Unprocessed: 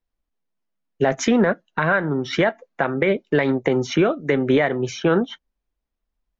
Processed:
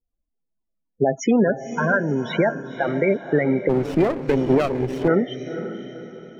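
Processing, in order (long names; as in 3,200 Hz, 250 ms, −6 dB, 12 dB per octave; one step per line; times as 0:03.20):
spectral peaks only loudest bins 16
feedback delay with all-pass diffusion 507 ms, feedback 42%, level −10.5 dB
0:03.69–0:05.08: windowed peak hold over 17 samples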